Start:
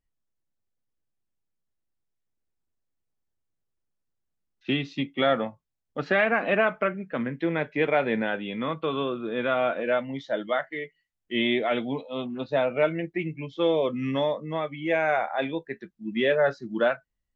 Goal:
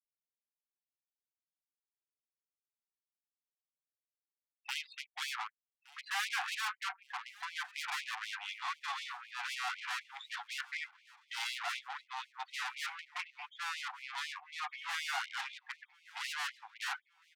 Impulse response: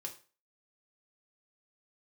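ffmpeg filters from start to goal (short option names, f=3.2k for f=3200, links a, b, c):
-filter_complex "[0:a]afftfilt=real='re*gte(hypot(re,im),0.0112)':imag='im*gte(hypot(re,im),0.0112)':win_size=1024:overlap=0.75,tiltshelf=f=1.2k:g=3.5,aeval=exprs='(tanh(44.7*val(0)+0.75)-tanh(0.75))/44.7':c=same,asplit=2[a][b];[b]aecho=0:1:1166|2332|3498:0.0794|0.0389|0.0191[c];[a][c]amix=inputs=2:normalize=0,afftfilt=real='re*gte(b*sr/1024,690*pow(2100/690,0.5+0.5*sin(2*PI*4*pts/sr)))':imag='im*gte(b*sr/1024,690*pow(2100/690,0.5+0.5*sin(2*PI*4*pts/sr)))':win_size=1024:overlap=0.75,volume=4.5dB"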